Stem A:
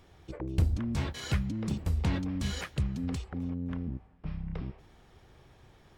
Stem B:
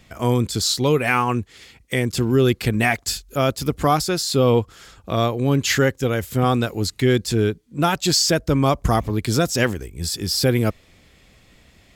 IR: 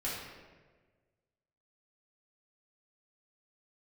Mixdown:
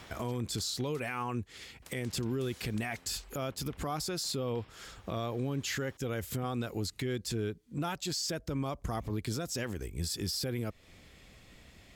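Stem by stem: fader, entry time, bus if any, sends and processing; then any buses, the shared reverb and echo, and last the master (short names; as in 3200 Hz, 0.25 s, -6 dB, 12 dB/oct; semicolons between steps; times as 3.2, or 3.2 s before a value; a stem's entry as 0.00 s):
+1.5 dB, 0.00 s, muted 1–1.82, no send, compressor, threshold -32 dBFS, peak gain reduction 11 dB; spectral compressor 4:1; auto duck -11 dB, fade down 0.45 s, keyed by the second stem
-3.5 dB, 0.00 s, no send, compressor 4:1, threshold -26 dBFS, peak gain reduction 12 dB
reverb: off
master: limiter -26 dBFS, peak gain reduction 9.5 dB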